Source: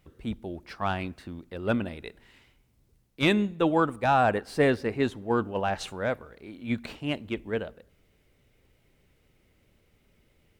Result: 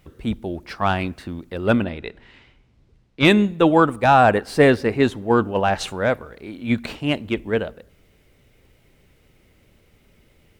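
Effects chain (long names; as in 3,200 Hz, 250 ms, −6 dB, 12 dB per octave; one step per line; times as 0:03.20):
0:01.84–0:03.25: low-pass filter 4,200 Hz 12 dB per octave
level +8.5 dB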